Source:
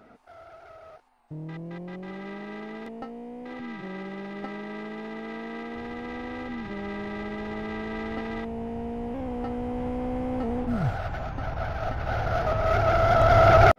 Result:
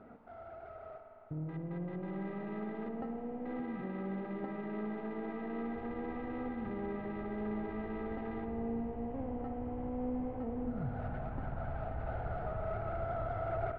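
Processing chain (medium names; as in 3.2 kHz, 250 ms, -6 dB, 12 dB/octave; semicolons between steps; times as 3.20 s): treble shelf 2.2 kHz -11.5 dB; compression 5:1, threshold -37 dBFS, peak gain reduction 21 dB; distance through air 290 m; spring tank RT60 3.4 s, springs 52 ms, chirp 40 ms, DRR 5 dB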